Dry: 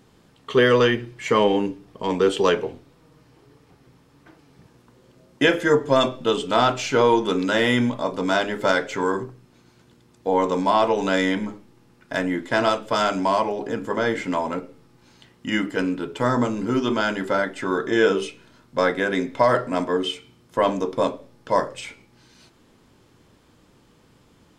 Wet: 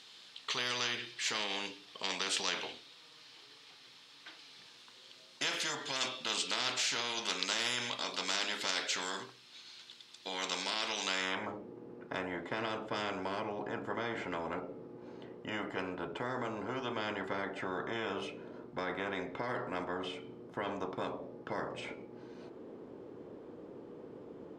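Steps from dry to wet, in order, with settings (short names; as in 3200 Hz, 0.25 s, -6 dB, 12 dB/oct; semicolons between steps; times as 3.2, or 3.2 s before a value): limiter -11.5 dBFS, peak gain reduction 7 dB; band-pass sweep 3800 Hz -> 420 Hz, 11.02–11.58; spectral compressor 4:1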